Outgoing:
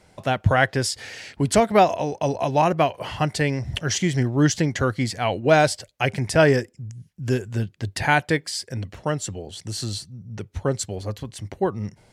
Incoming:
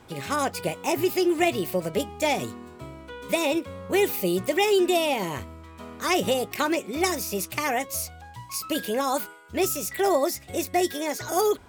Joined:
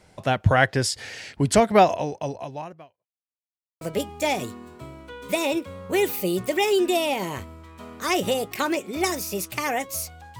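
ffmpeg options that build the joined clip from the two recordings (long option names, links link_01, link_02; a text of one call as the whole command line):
ffmpeg -i cue0.wav -i cue1.wav -filter_complex "[0:a]apad=whole_dur=10.39,atrim=end=10.39,asplit=2[link_01][link_02];[link_01]atrim=end=3.07,asetpts=PTS-STARTPTS,afade=type=out:start_time=1.91:duration=1.16:curve=qua[link_03];[link_02]atrim=start=3.07:end=3.81,asetpts=PTS-STARTPTS,volume=0[link_04];[1:a]atrim=start=1.81:end=8.39,asetpts=PTS-STARTPTS,afade=type=in:duration=0.004:curve=hsin[link_05];[link_03][link_04][link_05]concat=n=3:v=0:a=1" out.wav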